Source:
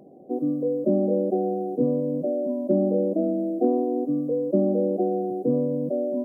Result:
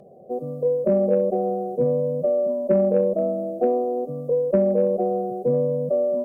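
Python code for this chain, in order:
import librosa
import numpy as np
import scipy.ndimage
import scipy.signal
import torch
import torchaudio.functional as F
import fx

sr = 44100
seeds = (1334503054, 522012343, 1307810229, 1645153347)

y = x + 0.93 * np.pad(x, (int(1.7 * sr / 1000.0), 0))[:len(x)]
y = fx.cheby_harmonics(y, sr, harmonics=(3, 4, 5), levels_db=(-21, -41, -33), full_scale_db=-9.0)
y = y * librosa.db_to_amplitude(2.0)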